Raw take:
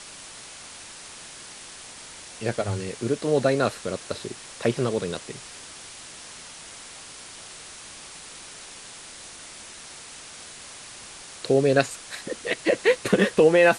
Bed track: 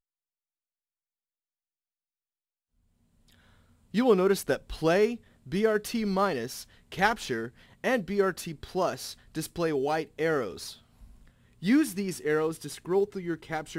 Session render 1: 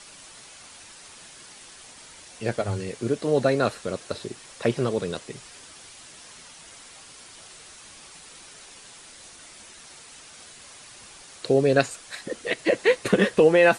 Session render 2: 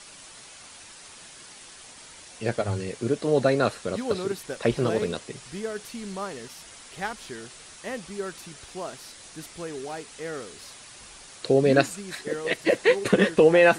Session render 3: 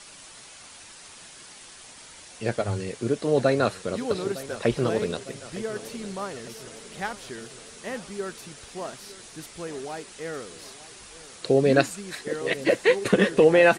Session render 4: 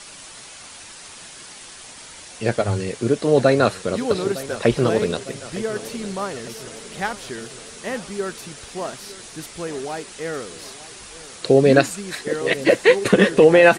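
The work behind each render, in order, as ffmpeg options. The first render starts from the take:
-af "afftdn=nr=6:nf=-43"
-filter_complex "[1:a]volume=0.422[s0];[0:a][s0]amix=inputs=2:normalize=0"
-af "aecho=1:1:908|1816|2724|3632|4540:0.141|0.0805|0.0459|0.0262|0.0149"
-af "volume=2,alimiter=limit=0.794:level=0:latency=1"

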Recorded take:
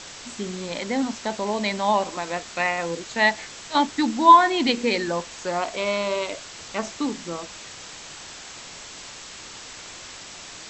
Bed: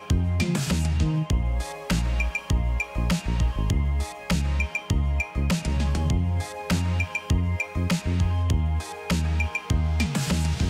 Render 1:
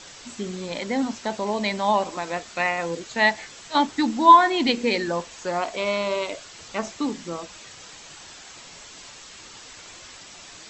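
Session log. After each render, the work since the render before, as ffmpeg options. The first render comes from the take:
-af "afftdn=nr=6:nf=-41"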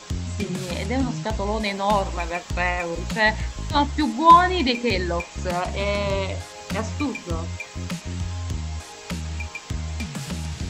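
-filter_complex "[1:a]volume=0.501[s0];[0:a][s0]amix=inputs=2:normalize=0"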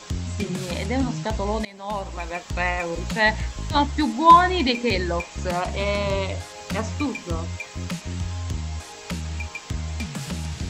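-filter_complex "[0:a]asplit=2[s0][s1];[s0]atrim=end=1.65,asetpts=PTS-STARTPTS,afade=t=out:st=1.646:d=0.004:c=hsin:silence=0.0891251[s2];[s1]atrim=start=1.65,asetpts=PTS-STARTPTS,afade=t=in:d=1.38:c=qsin:silence=0.0891251[s3];[s2][s3]concat=n=2:v=0:a=1"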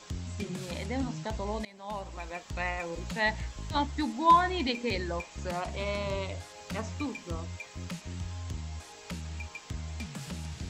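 -af "volume=0.355"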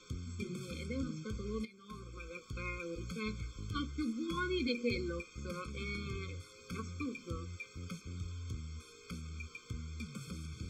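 -af "flanger=delay=8.1:depth=1.3:regen=62:speed=0.43:shape=sinusoidal,afftfilt=real='re*eq(mod(floor(b*sr/1024/520),2),0)':imag='im*eq(mod(floor(b*sr/1024/520),2),0)':win_size=1024:overlap=0.75"

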